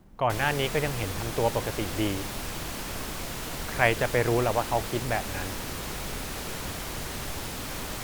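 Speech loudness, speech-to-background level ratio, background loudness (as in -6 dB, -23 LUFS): -28.5 LUFS, 6.0 dB, -34.5 LUFS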